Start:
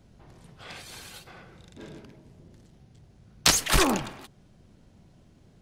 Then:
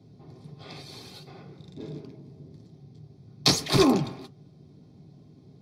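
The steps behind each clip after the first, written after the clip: reverberation RT60 0.15 s, pre-delay 3 ms, DRR 2.5 dB; trim -9 dB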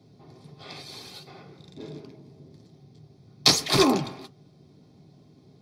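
bass shelf 360 Hz -8 dB; trim +3.5 dB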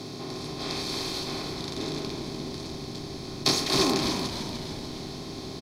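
spectral levelling over time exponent 0.4; on a send: frequency-shifting echo 298 ms, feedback 51%, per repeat -75 Hz, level -8 dB; on the sum: trim -8 dB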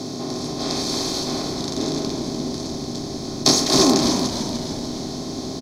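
fifteen-band graphic EQ 250 Hz +7 dB, 630 Hz +6 dB, 2.5 kHz -6 dB, 6.3 kHz +8 dB; trim +4.5 dB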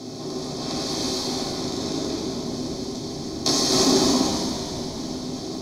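gated-style reverb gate 350 ms flat, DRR -3.5 dB; trim -7.5 dB

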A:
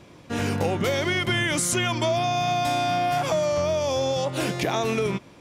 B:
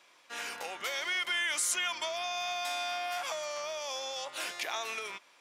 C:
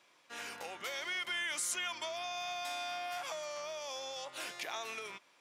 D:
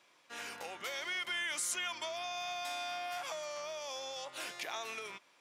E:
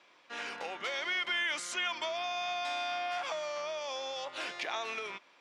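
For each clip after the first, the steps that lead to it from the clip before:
high-pass 1.1 kHz 12 dB/octave; trim -5 dB
bass shelf 260 Hz +9.5 dB; trim -5.5 dB
no audible change
band-pass 170–4400 Hz; trim +5 dB

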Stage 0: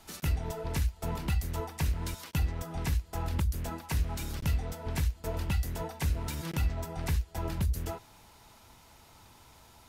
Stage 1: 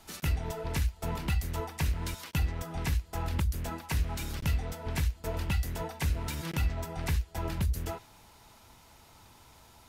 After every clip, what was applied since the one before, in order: dynamic bell 2.3 kHz, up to +3 dB, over -50 dBFS, Q 0.76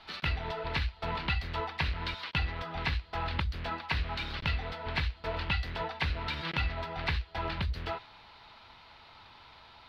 FFT filter 300 Hz 0 dB, 1.2 kHz +10 dB, 4.3 kHz +11 dB, 7 kHz -20 dB, 13 kHz -23 dB; trim -4 dB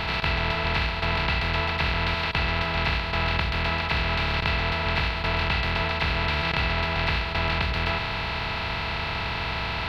spectral levelling over time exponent 0.2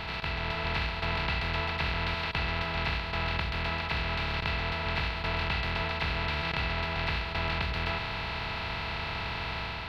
level rider gain up to 3 dB; trim -8.5 dB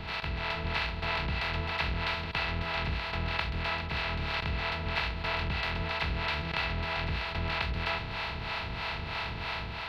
harmonic tremolo 3.1 Hz, depth 70%, crossover 460 Hz; trim +2 dB

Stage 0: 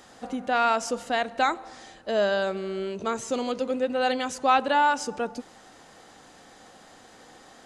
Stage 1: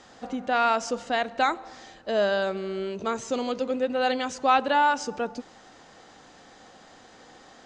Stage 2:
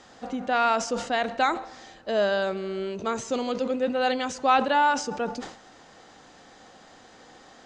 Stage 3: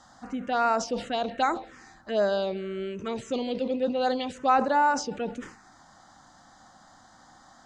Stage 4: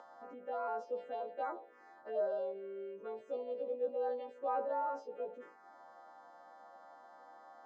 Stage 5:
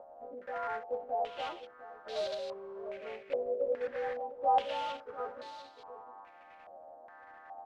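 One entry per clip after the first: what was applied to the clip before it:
low-pass 7.1 kHz 24 dB/octave
decay stretcher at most 110 dB/s
touch-sensitive phaser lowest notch 410 Hz, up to 3.3 kHz, full sweep at -18.5 dBFS
partials quantised in pitch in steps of 2 st; upward compressor, threshold -26 dBFS; ladder band-pass 580 Hz, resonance 45%; trim -2 dB
block-companded coder 3-bit; on a send: delay 699 ms -11 dB; on the sum: step-sequenced low-pass 2.4 Hz 610–4000 Hz; trim -1.5 dB

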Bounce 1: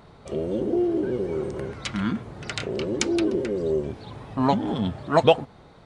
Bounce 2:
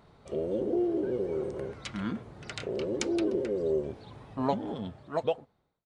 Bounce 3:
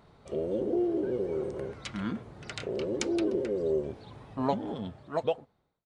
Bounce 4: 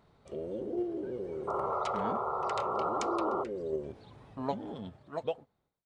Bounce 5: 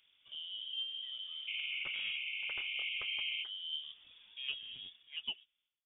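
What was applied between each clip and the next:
fade out at the end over 1.65 s; dynamic bell 510 Hz, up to +7 dB, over -39 dBFS, Q 1.4; trim -8.5 dB
no audible change
in parallel at -2 dB: level held to a coarse grid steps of 13 dB; on the sum: painted sound noise, 1.47–3.44 s, 360–1400 Hz -24 dBFS; trim -9 dB
frequency inversion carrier 3.5 kHz; trim -7 dB

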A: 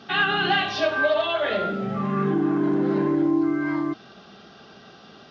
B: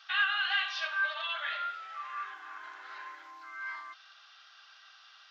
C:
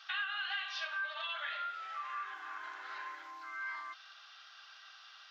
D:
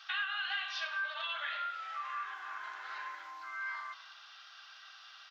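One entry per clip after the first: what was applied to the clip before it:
high-pass 1.2 kHz 24 dB/octave; dynamic bell 5.3 kHz, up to -3 dB, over -37 dBFS, Q 0.72; trim -4.5 dB
compression 3:1, threshold -39 dBFS, peak gain reduction 11.5 dB; trim +1 dB
high-pass 500 Hz 12 dB/octave; frequency-shifting echo 107 ms, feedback 47%, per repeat -47 Hz, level -17 dB; trim +1.5 dB

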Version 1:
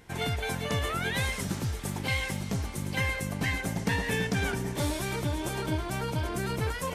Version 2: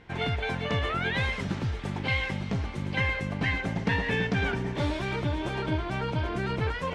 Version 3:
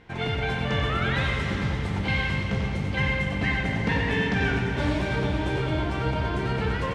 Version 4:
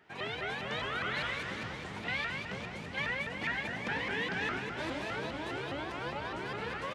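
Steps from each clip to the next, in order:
Chebyshev low-pass 3 kHz, order 2; trim +2.5 dB
delay 91 ms -7.5 dB; on a send at -2 dB: reverberation RT60 3.8 s, pre-delay 9 ms
high-pass 500 Hz 6 dB/octave; vibrato with a chosen wave saw up 4.9 Hz, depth 250 cents; trim -6.5 dB

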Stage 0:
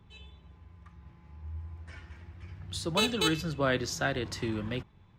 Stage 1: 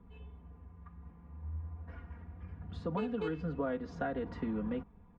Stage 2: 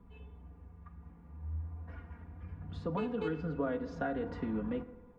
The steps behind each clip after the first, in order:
low-pass 1.1 kHz 12 dB/octave; comb 4.2 ms, depth 93%; compression 6:1, threshold -32 dBFS, peak gain reduction 10.5 dB
FDN reverb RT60 1.3 s, low-frequency decay 0.8×, high-frequency decay 0.4×, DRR 11 dB

